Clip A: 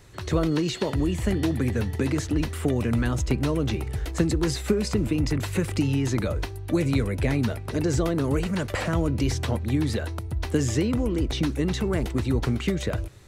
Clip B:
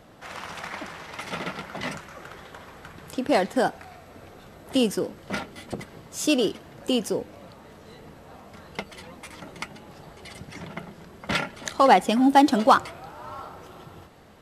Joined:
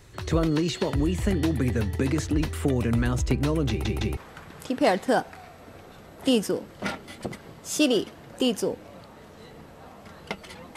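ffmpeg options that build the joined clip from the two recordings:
-filter_complex "[0:a]apad=whole_dur=10.76,atrim=end=10.76,asplit=3[a][b][c];[a]atrim=end=3.852[d];[b]atrim=start=3.688:end=3.852[e];[c]atrim=start=3.688:end=3.852[f];[1:a]atrim=start=2.648:end=9.24[g];[d][e]acrossfade=d=0.004:c1=hsin:c2=hsin[h];[h][f]acrossfade=d=0.004:c1=hsin:c2=hsin[i];[i][g]acrossfade=d=0.004:c1=hsin:c2=hsin"

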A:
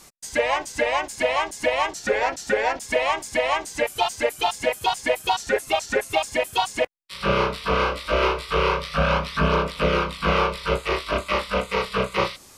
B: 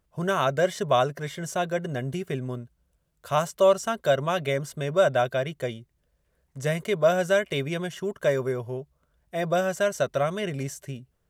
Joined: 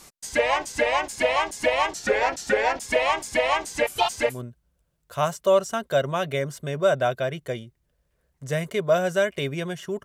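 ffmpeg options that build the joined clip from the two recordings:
-filter_complex "[0:a]apad=whole_dur=10.04,atrim=end=10.04,atrim=end=4.42,asetpts=PTS-STARTPTS[a];[1:a]atrim=start=2.38:end=8.18,asetpts=PTS-STARTPTS[b];[a][b]acrossfade=d=0.18:c1=tri:c2=tri"

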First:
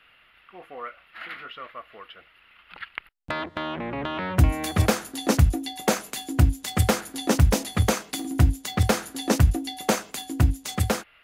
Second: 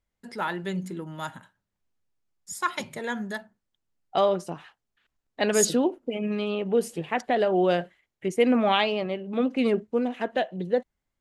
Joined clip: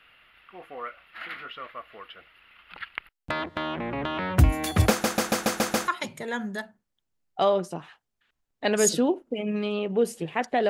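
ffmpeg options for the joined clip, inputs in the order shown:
-filter_complex "[0:a]apad=whole_dur=10.69,atrim=end=10.69,asplit=7[a][b][c][d][e][f][g];[a]atrim=end=5.042[h];[b]atrim=start=4.898:end=5.042[i];[c]atrim=start=4.898:end=5.042[j];[d]atrim=start=4.898:end=5.042[k];[e]atrim=start=4.898:end=5.042[l];[f]atrim=start=4.898:end=5.042[m];[g]atrim=start=4.898:end=5.042[n];[1:a]atrim=start=2.638:end=7.45[o];[h][i]acrossfade=d=0.004:c1=hsin:c2=hsin[p];[p][j]acrossfade=d=0.004:c1=hsin:c2=hsin[q];[q][k]acrossfade=d=0.004:c1=hsin:c2=hsin[r];[r][l]acrossfade=d=0.004:c1=hsin:c2=hsin[s];[s][m]acrossfade=d=0.004:c1=hsin:c2=hsin[t];[t][n]acrossfade=d=0.004:c1=hsin:c2=hsin[u];[u][o]acrossfade=d=0.004:c1=hsin:c2=hsin"

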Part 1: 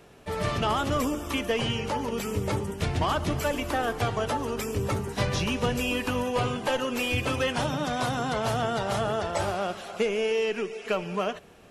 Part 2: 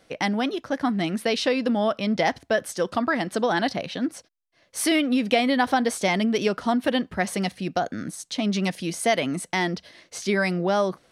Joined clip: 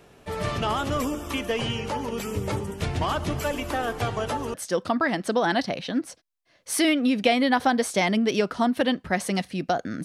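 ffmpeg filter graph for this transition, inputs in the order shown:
-filter_complex "[0:a]apad=whole_dur=10.04,atrim=end=10.04,atrim=end=4.542[a];[1:a]atrim=start=2.608:end=8.11[b];[a][b]acrossfade=d=0.004:c1=hsin:c2=hsin"

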